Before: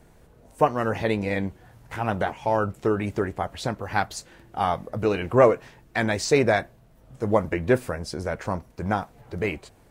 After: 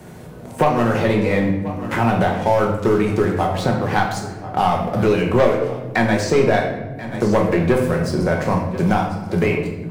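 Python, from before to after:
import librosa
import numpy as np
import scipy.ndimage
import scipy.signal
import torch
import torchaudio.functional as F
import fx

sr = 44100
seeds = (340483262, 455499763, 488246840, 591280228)

y = scipy.signal.sosfilt(scipy.signal.butter(2, 120.0, 'highpass', fs=sr, output='sos'), x)
y = fx.low_shelf(y, sr, hz=190.0, db=7.0)
y = fx.leveller(y, sr, passes=2)
y = y + 10.0 ** (-21.5 / 20.0) * np.pad(y, (int(1033 * sr / 1000.0), 0))[:len(y)]
y = fx.room_shoebox(y, sr, seeds[0], volume_m3=210.0, walls='mixed', distance_m=1.0)
y = fx.band_squash(y, sr, depth_pct=70)
y = y * 10.0 ** (-4.0 / 20.0)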